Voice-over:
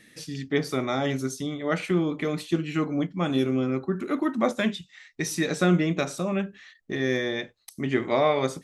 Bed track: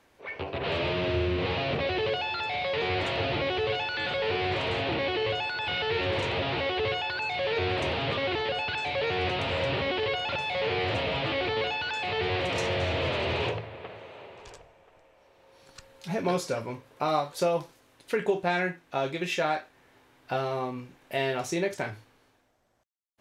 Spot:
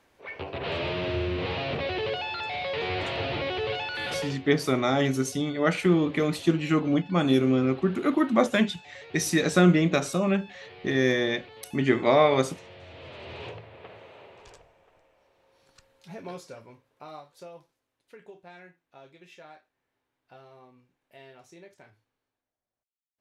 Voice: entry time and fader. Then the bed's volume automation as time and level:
3.95 s, +2.5 dB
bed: 0:04.20 −1.5 dB
0:04.41 −19.5 dB
0:12.81 −19.5 dB
0:13.92 −3.5 dB
0:14.90 −3.5 dB
0:17.90 −21.5 dB

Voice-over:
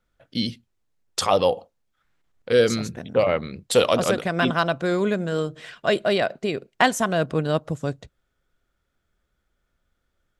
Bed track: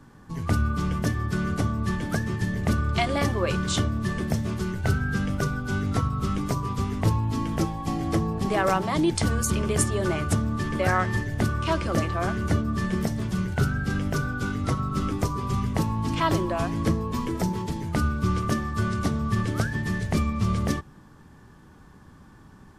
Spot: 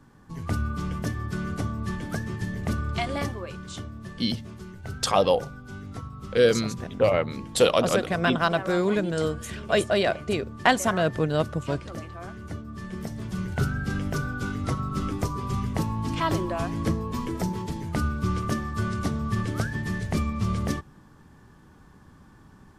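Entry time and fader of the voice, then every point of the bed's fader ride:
3.85 s, −1.5 dB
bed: 0:03.21 −4 dB
0:03.49 −12.5 dB
0:12.66 −12.5 dB
0:13.55 −2 dB

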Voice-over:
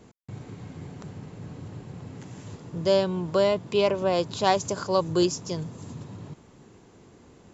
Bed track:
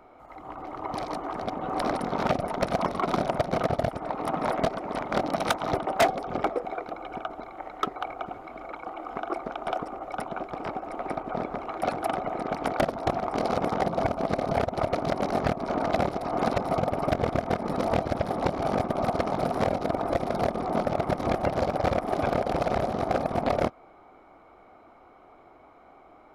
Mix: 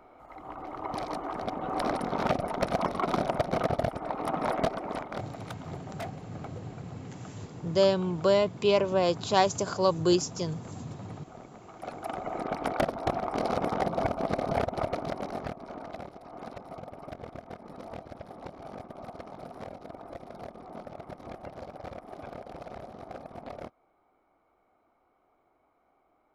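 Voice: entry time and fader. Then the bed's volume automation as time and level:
4.90 s, −1.0 dB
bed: 0:04.91 −2 dB
0:05.38 −17.5 dB
0:11.60 −17.5 dB
0:12.36 −2.5 dB
0:14.71 −2.5 dB
0:16.02 −16.5 dB

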